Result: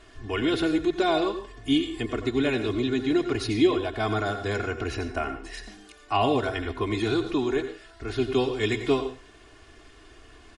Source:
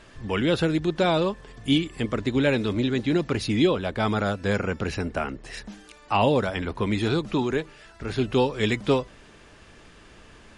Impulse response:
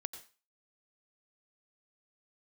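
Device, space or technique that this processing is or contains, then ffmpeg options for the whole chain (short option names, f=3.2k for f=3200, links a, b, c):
microphone above a desk: -filter_complex "[0:a]aecho=1:1:2.8:0.85[a];[1:a]atrim=start_sample=2205[b];[a][b]afir=irnorm=-1:irlink=0,volume=-2dB"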